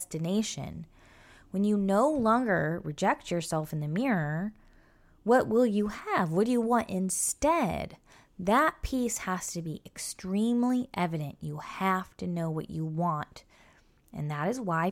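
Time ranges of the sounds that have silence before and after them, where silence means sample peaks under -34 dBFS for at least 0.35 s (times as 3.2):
1.54–4.49
5.26–7.9
8.4–13.37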